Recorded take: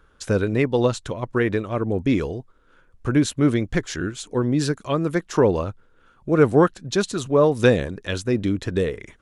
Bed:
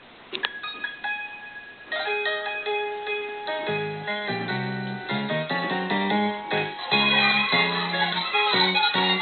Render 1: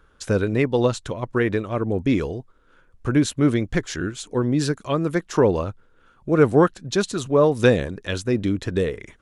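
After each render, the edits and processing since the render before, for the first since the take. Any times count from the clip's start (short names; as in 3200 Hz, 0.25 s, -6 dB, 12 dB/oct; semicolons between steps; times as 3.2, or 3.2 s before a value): nothing audible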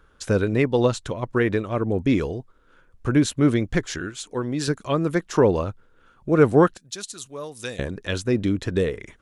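3.98–4.68 low shelf 490 Hz -7.5 dB; 6.77–7.79 pre-emphasis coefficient 0.9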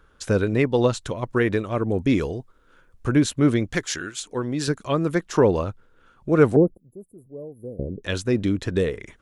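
1.01–3.14 high shelf 6300 Hz +5 dB; 3.72–4.2 tilt +2 dB/oct; 6.56–8.04 inverse Chebyshev band-stop 1800–5900 Hz, stop band 70 dB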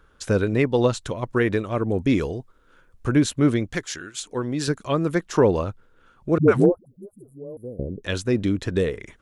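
3.41–4.14 fade out, to -6.5 dB; 6.38–7.57 dispersion highs, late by 0.101 s, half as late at 310 Hz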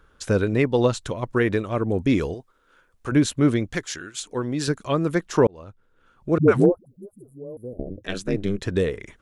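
2.34–3.12 low shelf 280 Hz -11 dB; 5.47–6.38 fade in; 7.73–8.62 ring modulator 100 Hz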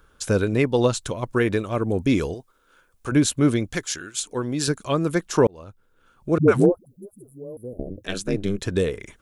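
high shelf 6700 Hz +10.5 dB; notch 1900 Hz, Q 15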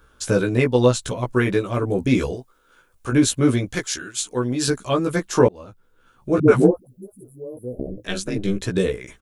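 doubler 16 ms -2 dB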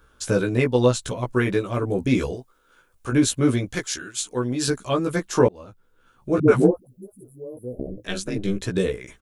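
gain -2 dB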